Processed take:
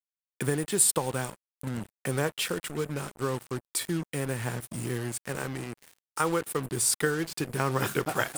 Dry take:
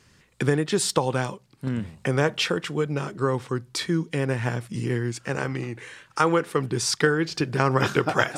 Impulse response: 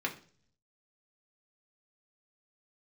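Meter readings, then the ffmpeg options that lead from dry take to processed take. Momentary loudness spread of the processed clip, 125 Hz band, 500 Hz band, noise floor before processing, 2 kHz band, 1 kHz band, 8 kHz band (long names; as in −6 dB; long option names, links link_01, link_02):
12 LU, −6.5 dB, −6.5 dB, −59 dBFS, −6.5 dB, −6.5 dB, +4.0 dB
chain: -af "aexciter=amount=6.7:drive=6.6:freq=8100,acrusher=bits=4:mix=0:aa=0.5,volume=-6.5dB"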